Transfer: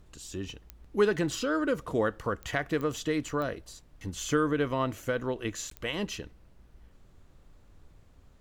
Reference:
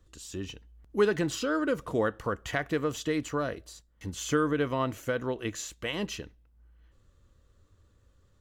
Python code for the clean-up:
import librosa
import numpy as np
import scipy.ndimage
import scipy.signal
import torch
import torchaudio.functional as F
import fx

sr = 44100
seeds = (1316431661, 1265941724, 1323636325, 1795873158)

y = fx.fix_declick_ar(x, sr, threshold=10.0)
y = fx.fix_interpolate(y, sr, at_s=(5.7,), length_ms=13.0)
y = fx.noise_reduce(y, sr, print_start_s=7.89, print_end_s=8.39, reduce_db=7.0)